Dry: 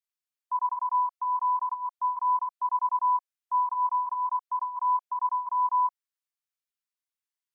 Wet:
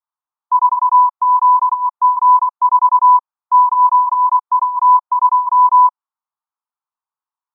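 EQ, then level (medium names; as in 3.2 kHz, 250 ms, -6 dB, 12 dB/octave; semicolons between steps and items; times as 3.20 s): resonant high-pass 880 Hz, resonance Q 4.1; resonant low-pass 1.2 kHz, resonance Q 2.8; distance through air 460 m; 0.0 dB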